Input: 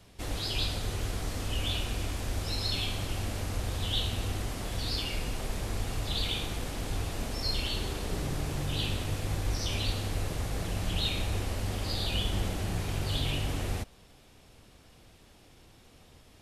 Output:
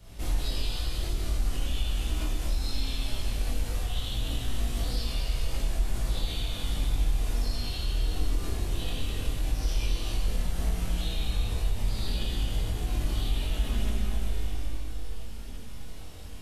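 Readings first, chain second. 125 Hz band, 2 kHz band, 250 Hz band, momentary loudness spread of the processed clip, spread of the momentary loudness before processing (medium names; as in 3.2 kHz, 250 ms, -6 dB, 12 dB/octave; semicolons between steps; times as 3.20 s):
+0.5 dB, -3.0 dB, -1.0 dB, 5 LU, 5 LU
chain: treble shelf 9.5 kHz +6.5 dB; Schroeder reverb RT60 2.5 s, combs from 26 ms, DRR -8.5 dB; compression 6:1, threshold -33 dBFS, peak gain reduction 15.5 dB; bass shelf 110 Hz +11.5 dB; chorus voices 6, 0.15 Hz, delay 20 ms, depth 3.4 ms; trim +1.5 dB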